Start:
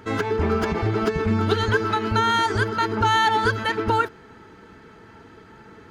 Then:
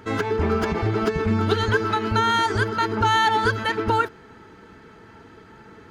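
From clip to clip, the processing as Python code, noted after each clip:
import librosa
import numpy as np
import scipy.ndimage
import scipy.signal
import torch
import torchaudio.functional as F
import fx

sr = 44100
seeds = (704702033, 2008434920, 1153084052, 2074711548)

y = x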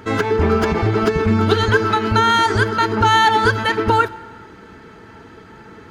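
y = fx.rev_plate(x, sr, seeds[0], rt60_s=1.6, hf_ratio=0.8, predelay_ms=0, drr_db=17.0)
y = F.gain(torch.from_numpy(y), 5.5).numpy()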